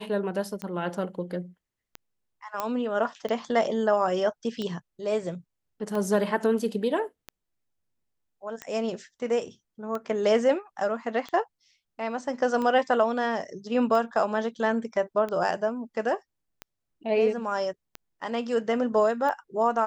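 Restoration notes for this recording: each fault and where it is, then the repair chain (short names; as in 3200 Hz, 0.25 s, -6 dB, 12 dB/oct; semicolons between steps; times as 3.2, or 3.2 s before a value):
tick 45 rpm -20 dBFS
2.6 pop -14 dBFS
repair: de-click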